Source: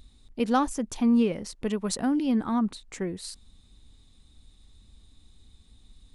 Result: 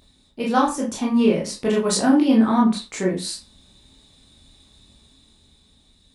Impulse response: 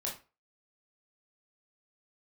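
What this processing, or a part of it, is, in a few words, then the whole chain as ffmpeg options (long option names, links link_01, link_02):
far laptop microphone: -filter_complex "[1:a]atrim=start_sample=2205[link_01];[0:a][link_01]afir=irnorm=-1:irlink=0,highpass=frequency=170:poles=1,dynaudnorm=framelen=200:gausssize=11:maxgain=5dB,volume=4dB"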